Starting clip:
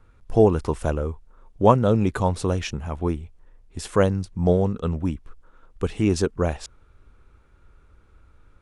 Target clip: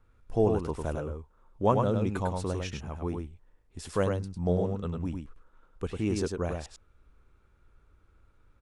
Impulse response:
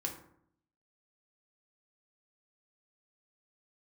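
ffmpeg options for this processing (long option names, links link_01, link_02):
-af "aecho=1:1:101:0.596,volume=-9dB"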